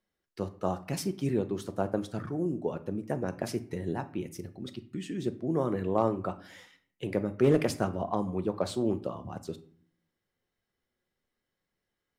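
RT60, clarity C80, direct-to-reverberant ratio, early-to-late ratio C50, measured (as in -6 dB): 0.55 s, 20.0 dB, 9.5 dB, 15.5 dB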